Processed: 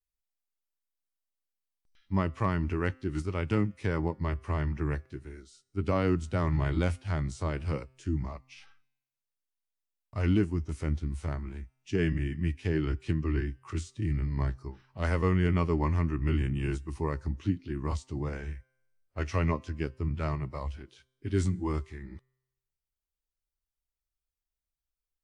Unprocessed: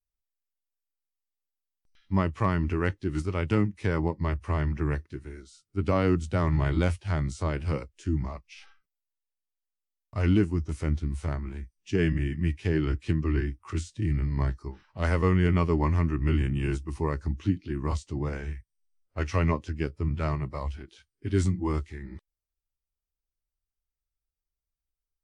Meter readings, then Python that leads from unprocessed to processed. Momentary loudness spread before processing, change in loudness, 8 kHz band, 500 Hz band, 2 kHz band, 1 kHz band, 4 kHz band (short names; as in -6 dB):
13 LU, -3.0 dB, -3.0 dB, -3.0 dB, -3.0 dB, -3.0 dB, -3.0 dB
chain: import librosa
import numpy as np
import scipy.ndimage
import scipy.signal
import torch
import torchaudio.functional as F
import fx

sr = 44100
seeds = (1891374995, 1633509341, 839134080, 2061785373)

y = fx.comb_fb(x, sr, f0_hz=130.0, decay_s=0.98, harmonics='all', damping=0.0, mix_pct=30)